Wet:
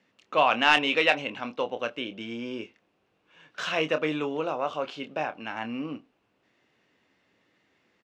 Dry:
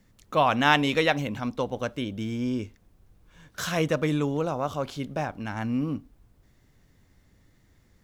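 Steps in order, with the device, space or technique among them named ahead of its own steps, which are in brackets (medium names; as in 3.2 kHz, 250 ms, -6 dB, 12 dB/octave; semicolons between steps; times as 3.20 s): intercom (band-pass 340–3900 Hz; peaking EQ 2.7 kHz +9 dB 0.33 oct; saturation -6 dBFS, distortion -20 dB; doubling 26 ms -9 dB)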